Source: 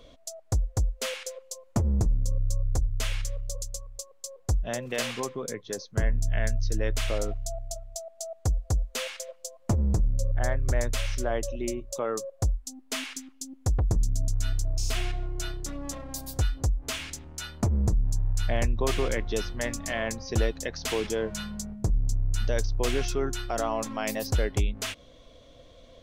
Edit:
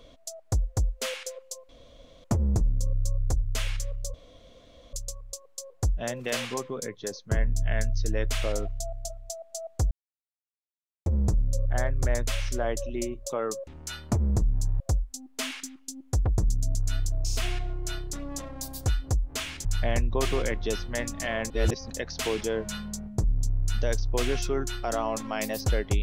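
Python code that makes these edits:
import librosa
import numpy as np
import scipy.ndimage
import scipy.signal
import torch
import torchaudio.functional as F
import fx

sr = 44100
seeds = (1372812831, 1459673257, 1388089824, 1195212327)

y = fx.edit(x, sr, fx.insert_room_tone(at_s=1.69, length_s=0.55),
    fx.insert_room_tone(at_s=3.59, length_s=0.79),
    fx.silence(start_s=8.57, length_s=1.15),
    fx.move(start_s=17.18, length_s=1.13, to_s=12.33),
    fx.reverse_span(start_s=20.16, length_s=0.4), tone=tone)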